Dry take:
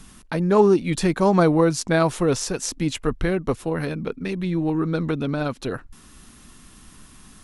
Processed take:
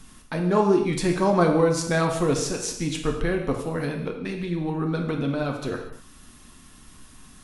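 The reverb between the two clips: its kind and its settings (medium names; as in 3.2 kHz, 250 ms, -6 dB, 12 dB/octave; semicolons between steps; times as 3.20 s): gated-style reverb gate 270 ms falling, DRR 2 dB; trim -3.5 dB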